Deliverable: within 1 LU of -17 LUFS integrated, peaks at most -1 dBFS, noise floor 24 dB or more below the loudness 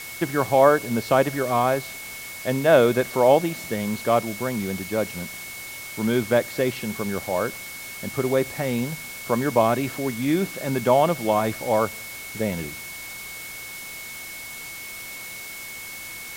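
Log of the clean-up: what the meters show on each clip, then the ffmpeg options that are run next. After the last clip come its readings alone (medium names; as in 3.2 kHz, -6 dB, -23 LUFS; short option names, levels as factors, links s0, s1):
steady tone 2.2 kHz; tone level -37 dBFS; noise floor -37 dBFS; noise floor target -48 dBFS; loudness -24.0 LUFS; peak level -2.5 dBFS; loudness target -17.0 LUFS
-> -af "bandreject=f=2200:w=30"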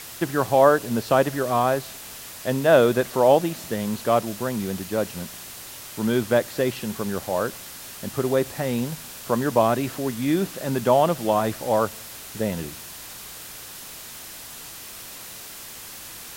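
steady tone not found; noise floor -40 dBFS; noise floor target -47 dBFS
-> -af "afftdn=nr=7:nf=-40"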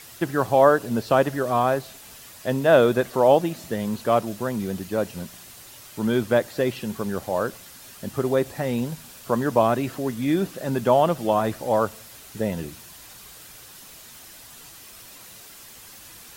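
noise floor -45 dBFS; noise floor target -47 dBFS
-> -af "afftdn=nr=6:nf=-45"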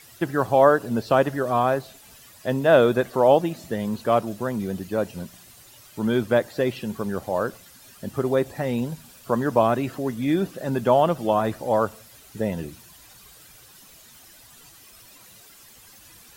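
noise floor -50 dBFS; loudness -23.0 LUFS; peak level -2.5 dBFS; loudness target -17.0 LUFS
-> -af "volume=2,alimiter=limit=0.891:level=0:latency=1"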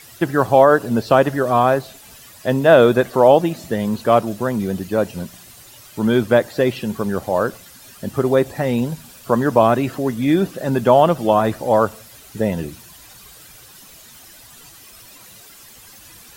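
loudness -17.5 LUFS; peak level -1.0 dBFS; noise floor -44 dBFS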